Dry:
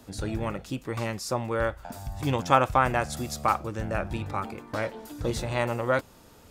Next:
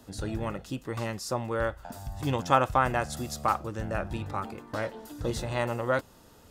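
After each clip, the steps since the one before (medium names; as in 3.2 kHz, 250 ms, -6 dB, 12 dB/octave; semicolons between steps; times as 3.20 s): band-stop 2.3 kHz, Q 9.8; trim -2 dB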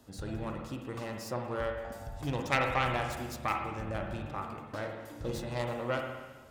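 self-modulated delay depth 0.29 ms; spring tank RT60 1.3 s, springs 49/55 ms, chirp 75 ms, DRR 2.5 dB; trim -6 dB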